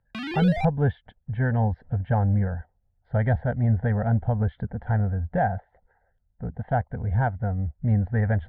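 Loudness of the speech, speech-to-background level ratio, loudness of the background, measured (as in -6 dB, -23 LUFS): -25.5 LUFS, 7.5 dB, -33.0 LUFS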